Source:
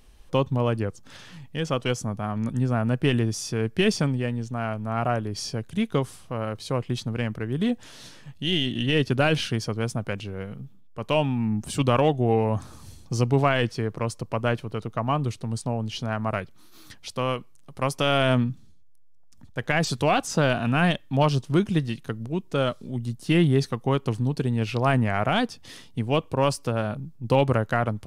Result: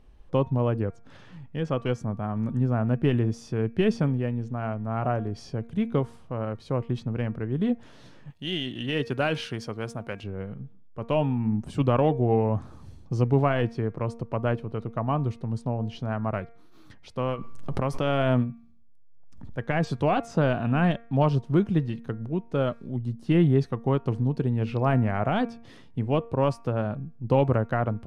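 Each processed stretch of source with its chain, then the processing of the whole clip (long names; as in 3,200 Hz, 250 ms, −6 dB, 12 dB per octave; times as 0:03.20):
0:08.30–0:10.24: spectral tilt +2.5 dB per octave + floating-point word with a short mantissa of 4 bits
0:17.28–0:19.58: transient designer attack −3 dB, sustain −11 dB + background raised ahead of every attack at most 25 dB per second
whole clip: low-pass filter 1,000 Hz 6 dB per octave; hum removal 232.1 Hz, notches 11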